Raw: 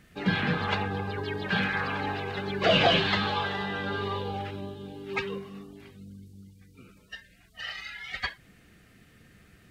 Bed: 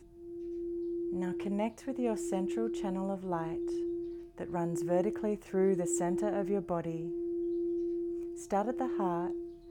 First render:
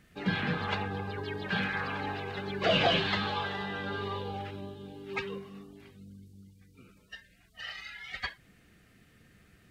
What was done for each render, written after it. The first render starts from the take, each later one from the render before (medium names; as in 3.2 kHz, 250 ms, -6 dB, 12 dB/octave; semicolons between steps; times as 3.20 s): trim -4 dB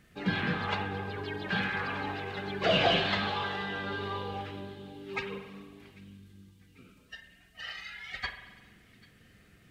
feedback echo behind a high-pass 793 ms, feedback 51%, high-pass 2.2 kHz, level -21.5 dB; spring tank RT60 1.3 s, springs 44 ms, chirp 70 ms, DRR 8 dB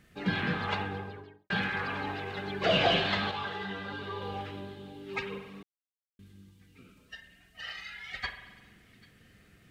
0.81–1.50 s: studio fade out; 3.31–4.22 s: three-phase chorus; 5.63–6.19 s: mute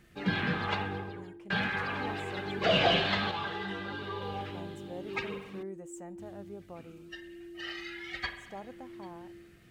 add bed -13 dB